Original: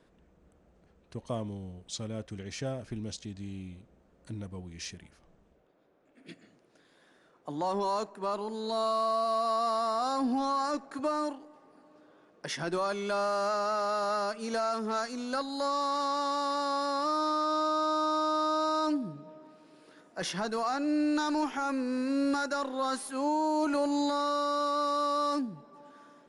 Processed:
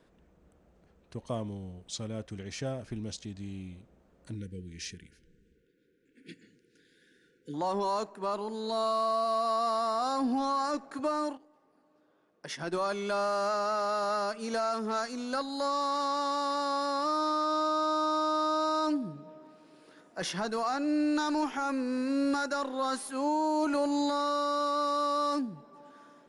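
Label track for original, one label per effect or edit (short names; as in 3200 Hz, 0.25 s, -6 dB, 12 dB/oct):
4.350000	7.540000	brick-wall FIR band-stop 520–1400 Hz
11.370000	12.800000	upward expander, over -47 dBFS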